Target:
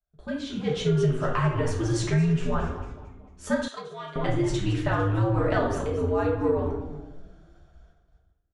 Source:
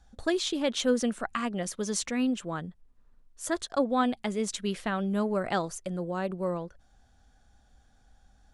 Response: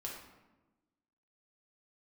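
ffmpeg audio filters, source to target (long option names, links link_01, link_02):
-filter_complex "[0:a]aemphasis=mode=reproduction:type=75kf,asoftclip=type=tanh:threshold=-16dB,dynaudnorm=framelen=140:gausssize=11:maxgain=12dB,asplit=5[link_01][link_02][link_03][link_04][link_05];[link_02]adelay=225,afreqshift=-150,volume=-13.5dB[link_06];[link_03]adelay=450,afreqshift=-300,volume=-20.4dB[link_07];[link_04]adelay=675,afreqshift=-450,volume=-27.4dB[link_08];[link_05]adelay=900,afreqshift=-600,volume=-34.3dB[link_09];[link_01][link_06][link_07][link_08][link_09]amix=inputs=5:normalize=0,afreqshift=-89,agate=range=-20dB:threshold=-52dB:ratio=16:detection=peak[link_10];[1:a]atrim=start_sample=2205,asetrate=61740,aresample=44100[link_11];[link_10][link_11]afir=irnorm=-1:irlink=0,acompressor=threshold=-19dB:ratio=5,asettb=1/sr,asplit=3[link_12][link_13][link_14];[link_12]atrim=end=3.684[link_15];[link_13]atrim=start=3.68:end=4.16,asetpts=PTS-STARTPTS,afade=type=in:duration=0.004:curve=qsin,afade=type=out:start_time=0.476:duration=0.004:curve=qsin,bandpass=frequency=5200:width_type=q:width=0.53:csg=0[link_16];[link_14]atrim=start=4.156[link_17];[link_15][link_16]acrossfade=duration=0.004:curve1=hsin:curve2=qsin[link_18];[link_18][link_17]acrossfade=duration=0.004:curve1=qsin:curve2=hsin"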